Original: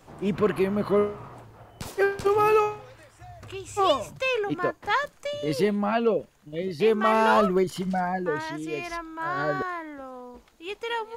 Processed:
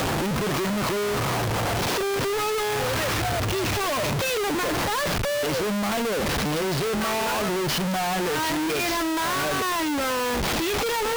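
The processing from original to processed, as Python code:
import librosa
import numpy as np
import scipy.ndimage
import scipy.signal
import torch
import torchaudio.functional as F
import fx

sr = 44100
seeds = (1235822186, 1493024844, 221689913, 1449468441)

y = fx.delta_mod(x, sr, bps=32000, step_db=-21.5)
y = scipy.signal.sosfilt(scipy.signal.butter(2, 64.0, 'highpass', fs=sr, output='sos'), y)
y = fx.schmitt(y, sr, flips_db=-33.5)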